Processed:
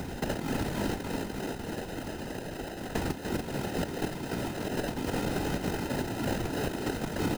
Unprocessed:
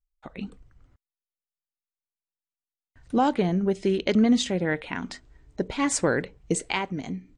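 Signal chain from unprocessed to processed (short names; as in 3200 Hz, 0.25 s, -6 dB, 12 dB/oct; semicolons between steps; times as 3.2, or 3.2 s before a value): per-bin compression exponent 0.4; steep low-pass 5000 Hz 96 dB/oct; low shelf 120 Hz +7 dB; negative-ratio compressor -29 dBFS, ratio -1; tape echo 0.293 s, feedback 71%, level -4 dB, low-pass 2000 Hz; sample-and-hold 39×; whisperiser; doubler 23 ms -13.5 dB; three-band squash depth 70%; gain -6.5 dB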